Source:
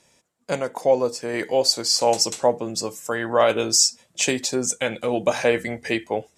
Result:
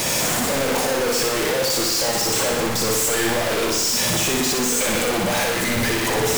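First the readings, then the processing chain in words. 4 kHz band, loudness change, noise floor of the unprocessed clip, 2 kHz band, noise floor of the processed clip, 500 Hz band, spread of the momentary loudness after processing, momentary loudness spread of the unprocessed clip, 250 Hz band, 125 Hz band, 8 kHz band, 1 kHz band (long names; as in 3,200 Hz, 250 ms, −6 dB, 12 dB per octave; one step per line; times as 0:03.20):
+2.5 dB, +2.5 dB, −65 dBFS, +6.0 dB, −22 dBFS, −0.5 dB, 2 LU, 10 LU, +4.0 dB, +7.5 dB, +4.0 dB, +2.0 dB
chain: sign of each sample alone
flutter between parallel walls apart 10.4 metres, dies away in 1 s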